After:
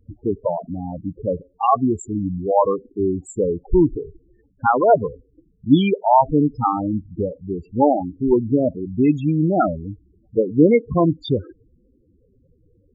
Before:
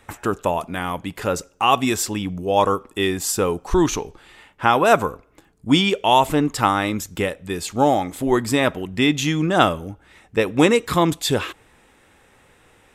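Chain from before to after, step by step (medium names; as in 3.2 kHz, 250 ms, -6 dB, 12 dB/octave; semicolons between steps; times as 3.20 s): local Wiener filter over 41 samples; loudest bins only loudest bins 8; trim +3.5 dB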